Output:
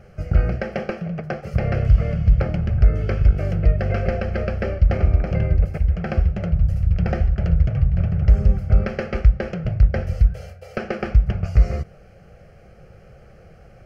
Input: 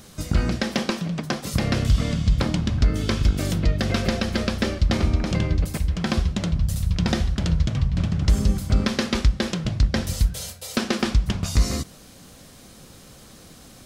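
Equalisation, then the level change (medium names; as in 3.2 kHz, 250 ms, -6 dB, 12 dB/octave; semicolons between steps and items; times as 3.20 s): distance through air 330 m; peaking EQ 1.8 kHz -6 dB 0.56 oct; static phaser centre 1 kHz, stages 6; +5.5 dB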